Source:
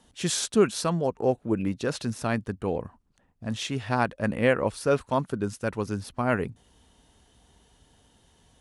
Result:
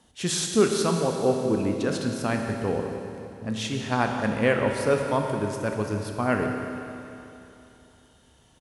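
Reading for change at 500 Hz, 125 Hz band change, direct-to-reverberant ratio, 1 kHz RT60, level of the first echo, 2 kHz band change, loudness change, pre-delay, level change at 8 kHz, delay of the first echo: +2.0 dB, +1.0 dB, 2.5 dB, 3.0 s, −14.0 dB, +2.0 dB, +1.5 dB, 28 ms, +2.0 dB, 178 ms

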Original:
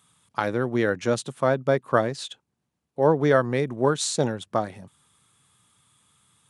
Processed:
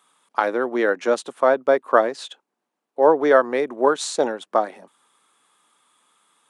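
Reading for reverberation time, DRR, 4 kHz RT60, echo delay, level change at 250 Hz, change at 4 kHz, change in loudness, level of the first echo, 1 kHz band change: no reverb audible, no reverb audible, no reverb audible, no echo audible, −0.5 dB, −0.5 dB, +4.0 dB, no echo audible, +6.0 dB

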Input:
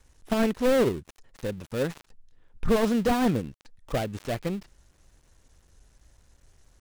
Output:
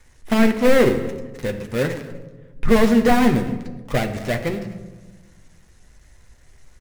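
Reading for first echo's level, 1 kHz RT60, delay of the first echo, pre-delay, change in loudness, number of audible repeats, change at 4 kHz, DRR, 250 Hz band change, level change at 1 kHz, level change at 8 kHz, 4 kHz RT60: −21.0 dB, 1.1 s, 248 ms, 8 ms, +7.5 dB, 1, +6.5 dB, 4.0 dB, +8.5 dB, +7.5 dB, +6.0 dB, 0.75 s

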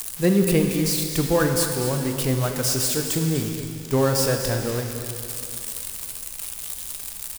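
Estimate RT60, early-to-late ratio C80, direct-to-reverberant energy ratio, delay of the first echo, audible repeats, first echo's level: 2.7 s, 4.5 dB, 3.0 dB, 246 ms, 1, −11.5 dB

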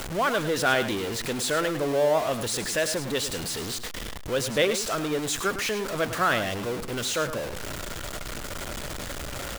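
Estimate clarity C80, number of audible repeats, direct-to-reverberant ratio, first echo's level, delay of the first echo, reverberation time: no reverb audible, 1, no reverb audible, −11.0 dB, 105 ms, no reverb audible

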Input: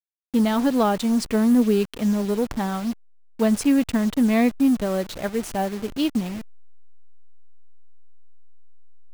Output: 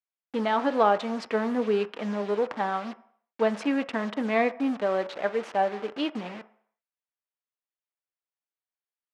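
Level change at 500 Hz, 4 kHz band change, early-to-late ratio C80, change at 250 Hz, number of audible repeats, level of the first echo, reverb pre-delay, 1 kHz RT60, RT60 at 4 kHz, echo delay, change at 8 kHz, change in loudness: −1.0 dB, −5.0 dB, 20.5 dB, −10.5 dB, no echo audible, no echo audible, 3 ms, 0.65 s, 0.60 s, no echo audible, below −15 dB, −5.5 dB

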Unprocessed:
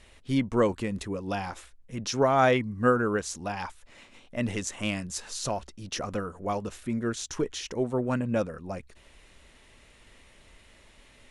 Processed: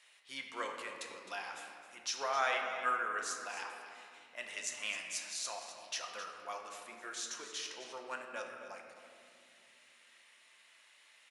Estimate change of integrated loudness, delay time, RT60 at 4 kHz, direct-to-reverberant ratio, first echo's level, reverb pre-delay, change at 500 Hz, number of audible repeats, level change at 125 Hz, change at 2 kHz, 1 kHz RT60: −10.5 dB, 262 ms, 1.3 s, 1.0 dB, −12.5 dB, 6 ms, −16.5 dB, 1, below −35 dB, −4.0 dB, 2.1 s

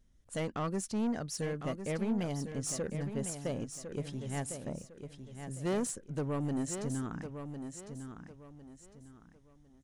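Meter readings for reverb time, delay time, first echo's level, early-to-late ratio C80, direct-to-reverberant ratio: no reverb audible, 1,054 ms, −8.5 dB, no reverb audible, no reverb audible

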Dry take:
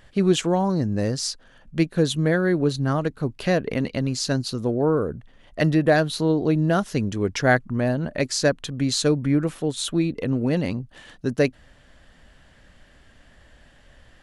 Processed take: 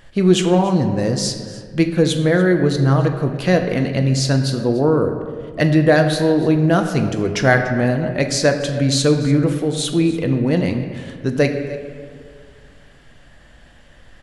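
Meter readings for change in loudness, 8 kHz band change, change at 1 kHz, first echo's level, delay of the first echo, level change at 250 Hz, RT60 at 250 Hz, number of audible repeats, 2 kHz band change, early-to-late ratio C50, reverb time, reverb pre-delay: +5.5 dB, +4.5 dB, +4.5 dB, −18.5 dB, 291 ms, +5.5 dB, 2.3 s, 1, +5.5 dB, 7.0 dB, 2.0 s, 6 ms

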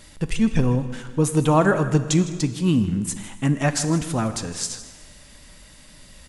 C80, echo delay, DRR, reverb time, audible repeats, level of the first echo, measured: 11.5 dB, 158 ms, 10.0 dB, 1.6 s, 1, −16.0 dB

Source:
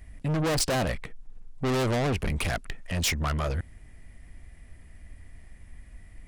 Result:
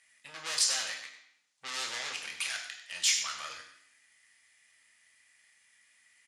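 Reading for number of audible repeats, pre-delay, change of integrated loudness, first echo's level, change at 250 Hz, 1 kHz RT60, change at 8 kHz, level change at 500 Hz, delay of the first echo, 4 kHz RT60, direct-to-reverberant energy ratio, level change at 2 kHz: 1, 3 ms, −3.0 dB, −11.5 dB, −31.0 dB, 0.65 s, +3.5 dB, −22.0 dB, 97 ms, 0.70 s, 0.5 dB, −3.0 dB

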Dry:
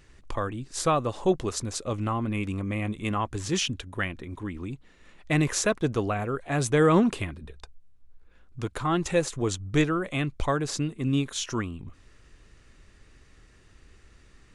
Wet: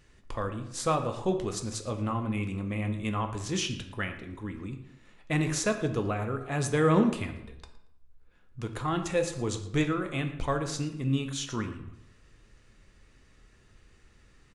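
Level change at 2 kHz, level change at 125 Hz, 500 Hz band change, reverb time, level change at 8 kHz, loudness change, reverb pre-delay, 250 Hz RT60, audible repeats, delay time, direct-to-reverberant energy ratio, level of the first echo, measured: −3.5 dB, −2.0 dB, −3.5 dB, 0.80 s, −4.0 dB, −3.0 dB, 3 ms, 0.80 s, 1, 115 ms, 5.5 dB, −18.0 dB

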